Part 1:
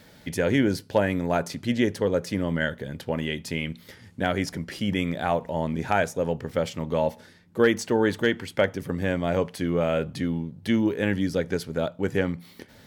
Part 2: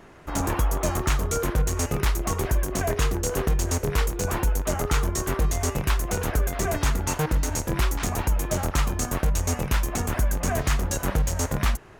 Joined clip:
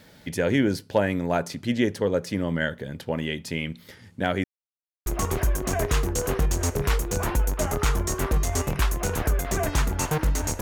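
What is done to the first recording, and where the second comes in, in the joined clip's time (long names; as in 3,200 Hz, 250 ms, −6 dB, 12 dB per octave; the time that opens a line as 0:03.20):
part 1
0:04.44–0:05.06: silence
0:05.06: continue with part 2 from 0:02.14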